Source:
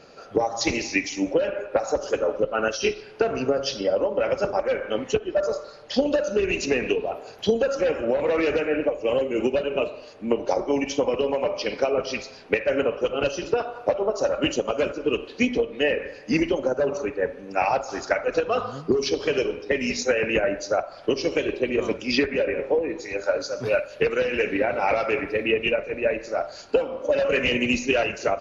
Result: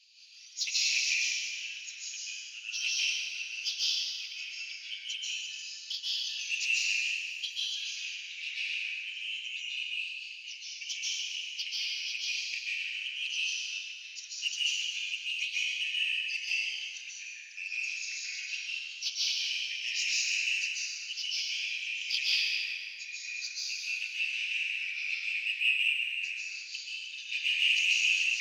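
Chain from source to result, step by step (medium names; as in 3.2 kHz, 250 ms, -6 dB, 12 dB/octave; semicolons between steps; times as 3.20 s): steep high-pass 2.7 kHz 48 dB/octave; treble shelf 5.3 kHz -9.5 dB; in parallel at -9 dB: saturation -34.5 dBFS, distortion -8 dB; on the sum: plate-style reverb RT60 2.6 s, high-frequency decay 0.65×, pre-delay 120 ms, DRR -8.5 dB; loudspeaker Doppler distortion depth 0.45 ms; trim -1.5 dB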